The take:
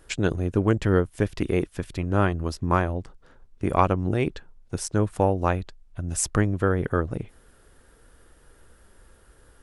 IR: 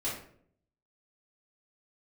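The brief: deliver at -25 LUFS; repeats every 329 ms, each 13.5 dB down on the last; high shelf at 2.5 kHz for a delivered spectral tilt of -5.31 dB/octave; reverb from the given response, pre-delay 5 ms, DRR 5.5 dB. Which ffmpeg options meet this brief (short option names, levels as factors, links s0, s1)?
-filter_complex "[0:a]highshelf=f=2500:g=5,aecho=1:1:329|658:0.211|0.0444,asplit=2[s0][s1];[1:a]atrim=start_sample=2205,adelay=5[s2];[s1][s2]afir=irnorm=-1:irlink=0,volume=0.316[s3];[s0][s3]amix=inputs=2:normalize=0,volume=0.891"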